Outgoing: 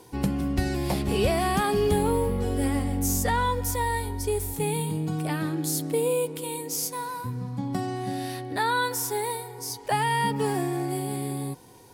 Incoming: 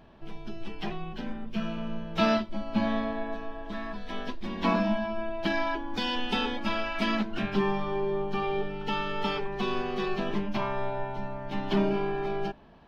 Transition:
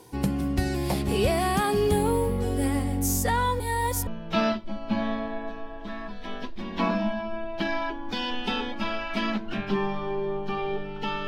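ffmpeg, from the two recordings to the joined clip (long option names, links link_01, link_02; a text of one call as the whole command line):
ffmpeg -i cue0.wav -i cue1.wav -filter_complex "[0:a]apad=whole_dur=11.27,atrim=end=11.27,asplit=2[link_01][link_02];[link_01]atrim=end=3.602[link_03];[link_02]atrim=start=3.598:end=4.072,asetpts=PTS-STARTPTS,areverse[link_04];[1:a]atrim=start=1.918:end=9.12[link_05];[link_03][link_04]acrossfade=duration=0.004:curve1=hsin:curve2=hsin[link_06];[link_06][link_05]acrossfade=duration=0.004:curve1=hsin:curve2=hsin" out.wav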